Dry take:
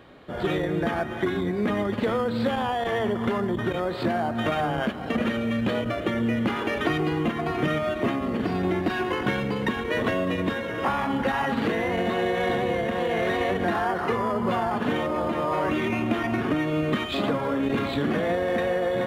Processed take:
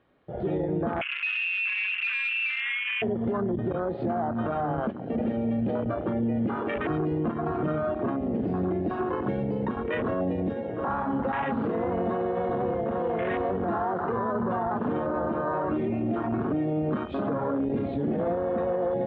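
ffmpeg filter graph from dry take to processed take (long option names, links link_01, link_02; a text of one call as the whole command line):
ffmpeg -i in.wav -filter_complex "[0:a]asettb=1/sr,asplit=3[link_01][link_02][link_03];[link_01]atrim=end=1.014[link_04];[link_02]atrim=start=1.01:end=3.02,asetpts=PTS-STARTPTS,afade=type=in:duration=0.004:curve=qsin,afade=type=out:start_time=2.006:duration=0.004:curve=qsin,tiltshelf=frequency=1100:gain=6.5,bandreject=frequency=660:width=10,lowpass=frequency=2500:width_type=q:width=0.5098,lowpass=frequency=2500:width_type=q:width=0.6013,lowpass=frequency=2500:width_type=q:width=0.9,lowpass=frequency=2500:width_type=q:width=2.563,afreqshift=-2900[link_05];[link_03]atrim=start=3.016[link_06];[link_04][link_05]acrossfade=duration=0.004:curve1=hsin:curve2=qsin[link_07];[link_07][link_06]acrossfade=duration=0.004:curve1=qsin:curve2=hsin,afwtdn=0.0501,alimiter=limit=-20dB:level=0:latency=1:release=16,lowpass=3200" out.wav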